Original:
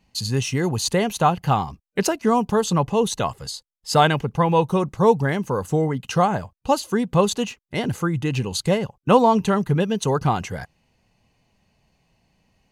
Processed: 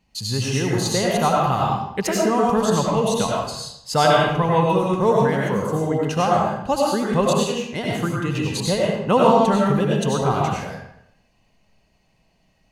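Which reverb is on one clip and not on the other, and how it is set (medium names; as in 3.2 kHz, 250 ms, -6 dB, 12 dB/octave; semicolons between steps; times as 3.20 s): algorithmic reverb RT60 0.77 s, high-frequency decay 0.85×, pre-delay 55 ms, DRR -3.5 dB; trim -3 dB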